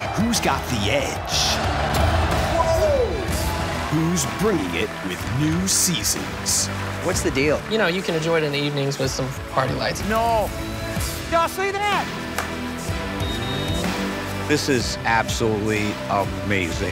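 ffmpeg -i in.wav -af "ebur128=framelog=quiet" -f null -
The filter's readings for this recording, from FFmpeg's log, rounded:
Integrated loudness:
  I:         -21.8 LUFS
  Threshold: -31.8 LUFS
Loudness range:
  LRA:         3.2 LU
  Threshold: -41.9 LUFS
  LRA low:   -23.7 LUFS
  LRA high:  -20.5 LUFS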